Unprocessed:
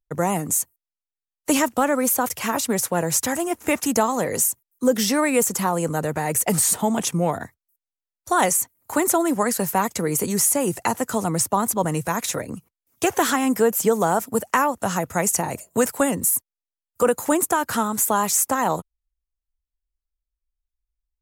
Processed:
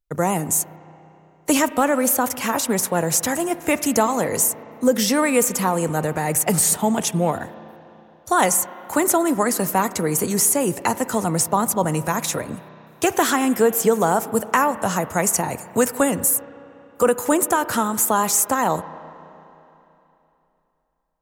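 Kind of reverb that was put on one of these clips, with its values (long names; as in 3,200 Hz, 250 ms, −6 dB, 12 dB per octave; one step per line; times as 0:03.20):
spring reverb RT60 3.1 s, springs 32/37 ms, chirp 75 ms, DRR 14 dB
level +1.5 dB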